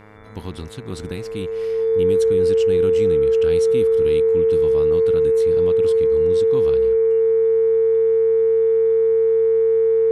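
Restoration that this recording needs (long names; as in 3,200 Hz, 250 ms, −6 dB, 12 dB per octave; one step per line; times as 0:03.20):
hum removal 105.8 Hz, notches 22
notch filter 450 Hz, Q 30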